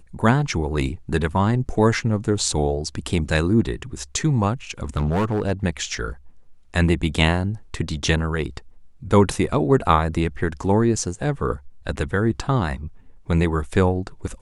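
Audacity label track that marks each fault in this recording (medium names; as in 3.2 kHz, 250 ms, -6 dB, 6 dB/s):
4.840000	5.510000	clipped -17 dBFS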